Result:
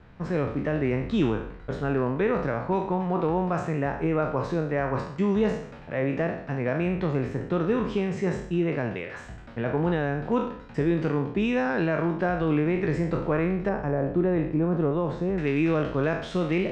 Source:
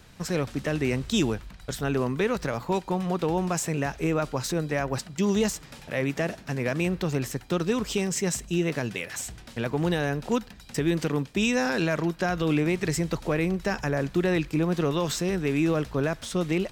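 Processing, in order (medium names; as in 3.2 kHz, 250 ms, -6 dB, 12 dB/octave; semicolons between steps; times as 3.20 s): spectral sustain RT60 0.63 s; low-pass 1.7 kHz 12 dB/octave, from 13.69 s 1 kHz, from 15.38 s 2.9 kHz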